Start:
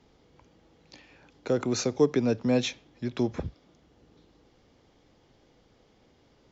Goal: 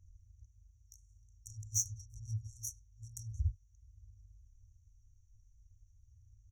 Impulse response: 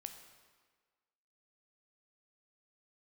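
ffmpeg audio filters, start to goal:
-filter_complex "[0:a]aphaser=in_gain=1:out_gain=1:delay=4.1:decay=0.37:speed=0.48:type=triangular,acrossover=split=280[link_01][link_02];[link_02]acompressor=threshold=-33dB:ratio=6[link_03];[link_01][link_03]amix=inputs=2:normalize=0,asplit=2[link_04][link_05];[1:a]atrim=start_sample=2205,atrim=end_sample=3528[link_06];[link_05][link_06]afir=irnorm=-1:irlink=0,volume=2.5dB[link_07];[link_04][link_07]amix=inputs=2:normalize=0,adynamicsmooth=sensitivity=3.5:basefreq=2200,asplit=2[link_08][link_09];[link_09]adelay=100,highpass=300,lowpass=3400,asoftclip=type=hard:threshold=-19.5dB,volume=-21dB[link_10];[link_08][link_10]amix=inputs=2:normalize=0,afftfilt=real='re*(1-between(b*sr/4096,110,5600))':imag='im*(1-between(b*sr/4096,110,5600))':win_size=4096:overlap=0.75,tiltshelf=frequency=1300:gain=-5.5,volume=6dB"

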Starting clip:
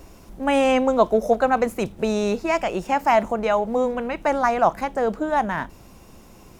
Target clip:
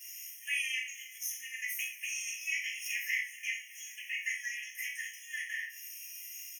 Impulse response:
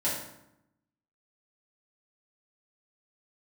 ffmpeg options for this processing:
-filter_complex "[0:a]acrossover=split=200|1600[link_01][link_02][link_03];[link_03]acompressor=threshold=-42dB:ratio=6[link_04];[link_01][link_02][link_04]amix=inputs=3:normalize=0,asplit=7[link_05][link_06][link_07][link_08][link_09][link_10][link_11];[link_06]adelay=110,afreqshift=-90,volume=-14.5dB[link_12];[link_07]adelay=220,afreqshift=-180,volume=-19.1dB[link_13];[link_08]adelay=330,afreqshift=-270,volume=-23.7dB[link_14];[link_09]adelay=440,afreqshift=-360,volume=-28.2dB[link_15];[link_10]adelay=550,afreqshift=-450,volume=-32.8dB[link_16];[link_11]adelay=660,afreqshift=-540,volume=-37.4dB[link_17];[link_05][link_12][link_13][link_14][link_15][link_16][link_17]amix=inputs=7:normalize=0,crystalizer=i=7.5:c=0[link_18];[1:a]atrim=start_sample=2205,afade=type=out:start_time=0.19:duration=0.01,atrim=end_sample=8820,asetrate=61740,aresample=44100[link_19];[link_18][link_19]afir=irnorm=-1:irlink=0,afftfilt=real='re*eq(mod(floor(b*sr/1024/1700),2),1)':imag='im*eq(mod(floor(b*sr/1024/1700),2),1)':win_size=1024:overlap=0.75,volume=-8.5dB"

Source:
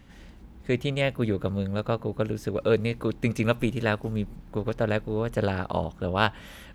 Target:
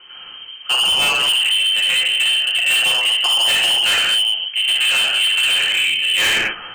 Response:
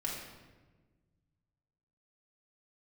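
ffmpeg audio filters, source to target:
-filter_complex "[0:a]lowpass=frequency=2700:width_type=q:width=0.5098,lowpass=frequency=2700:width_type=q:width=0.6013,lowpass=frequency=2700:width_type=q:width=0.9,lowpass=frequency=2700:width_type=q:width=2.563,afreqshift=-3200[link_01];[1:a]atrim=start_sample=2205,afade=type=out:start_time=0.21:duration=0.01,atrim=end_sample=9702,asetrate=26901,aresample=44100[link_02];[link_01][link_02]afir=irnorm=-1:irlink=0,volume=21.5dB,asoftclip=hard,volume=-21.5dB,volume=8dB"

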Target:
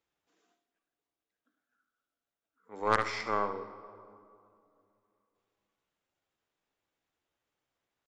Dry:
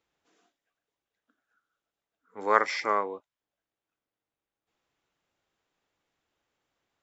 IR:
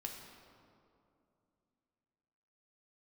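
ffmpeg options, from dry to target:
-filter_complex "[0:a]atempo=0.87,aeval=exprs='0.631*(cos(1*acos(clip(val(0)/0.631,-1,1)))-cos(1*PI/2))+0.0891*(cos(4*acos(clip(val(0)/0.631,-1,1)))-cos(4*PI/2))+0.0794*(cos(5*acos(clip(val(0)/0.631,-1,1)))-cos(5*PI/2))+0.0562*(cos(7*acos(clip(val(0)/0.631,-1,1)))-cos(7*PI/2))':channel_layout=same,asplit=2[link_01][link_02];[1:a]atrim=start_sample=2205,adelay=73[link_03];[link_02][link_03]afir=irnorm=-1:irlink=0,volume=-7.5dB[link_04];[link_01][link_04]amix=inputs=2:normalize=0,volume=-6dB"

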